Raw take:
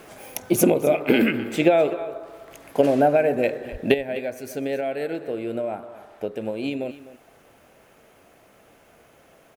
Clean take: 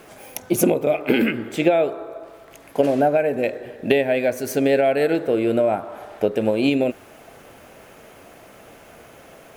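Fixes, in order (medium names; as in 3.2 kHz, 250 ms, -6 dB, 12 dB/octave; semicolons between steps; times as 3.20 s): 3.71–3.83 s: high-pass 140 Hz 24 dB/octave; inverse comb 254 ms -16 dB; 3.94 s: gain correction +9 dB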